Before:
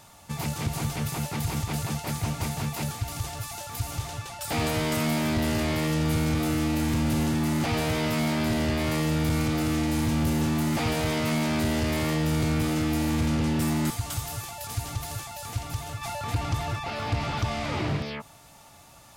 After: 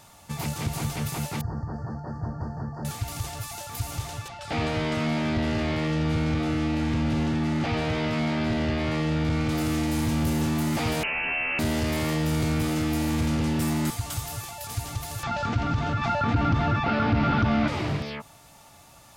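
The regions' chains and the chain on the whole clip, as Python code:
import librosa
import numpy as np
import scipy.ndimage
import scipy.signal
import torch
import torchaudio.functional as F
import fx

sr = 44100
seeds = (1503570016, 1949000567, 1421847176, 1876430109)

y = fx.chain(x, sr, fx.brickwall_bandstop(low_hz=1900.0, high_hz=4300.0),
    fx.spacing_loss(db_at_10k=44),
    fx.hum_notches(base_hz=50, count=8), at=(1.41, 2.85))
y = fx.chain(y, sr, fx.lowpass(hz=4100.0, slope=12),
    fx.notch(hz=1000.0, q=16.0), at=(4.28, 9.49))
y = fx.chain(y, sr, fx.low_shelf(hz=130.0, db=-10.0),
    fx.freq_invert(carrier_hz=2900), at=(11.03, 11.59))
y = fx.chain(y, sr, fx.gaussian_blur(sigma=2.0),
    fx.small_body(hz=(230.0, 1400.0), ring_ms=25, db=12),
    fx.env_flatten(amount_pct=50), at=(15.23, 17.68))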